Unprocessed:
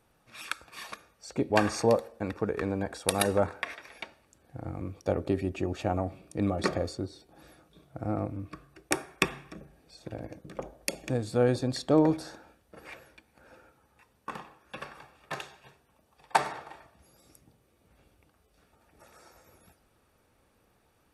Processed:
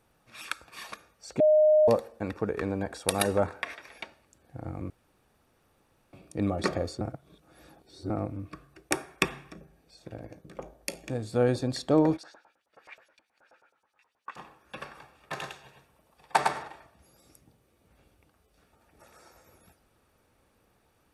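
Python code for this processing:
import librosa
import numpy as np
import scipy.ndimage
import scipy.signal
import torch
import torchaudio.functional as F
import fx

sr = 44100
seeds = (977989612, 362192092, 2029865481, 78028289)

y = fx.comb_fb(x, sr, f0_hz=56.0, decay_s=0.24, harmonics='all', damping=0.0, mix_pct=50, at=(9.52, 11.33), fade=0.02)
y = fx.filter_lfo_bandpass(y, sr, shape='saw_up', hz=9.4, low_hz=660.0, high_hz=7100.0, q=1.4, at=(12.16, 14.36), fade=0.02)
y = fx.echo_single(y, sr, ms=106, db=-3.5, at=(15.33, 16.67), fade=0.02)
y = fx.edit(y, sr, fx.bleep(start_s=1.4, length_s=0.48, hz=614.0, db=-16.5),
    fx.room_tone_fill(start_s=4.9, length_s=1.23),
    fx.reverse_span(start_s=7.01, length_s=1.09), tone=tone)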